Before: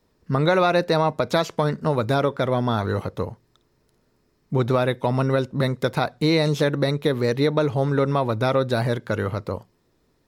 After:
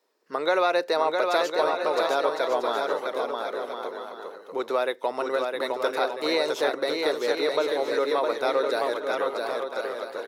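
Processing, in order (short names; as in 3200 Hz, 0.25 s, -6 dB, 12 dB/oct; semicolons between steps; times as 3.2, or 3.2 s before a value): HPF 380 Hz 24 dB/oct; bouncing-ball echo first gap 0.66 s, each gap 0.6×, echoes 5; gain -3 dB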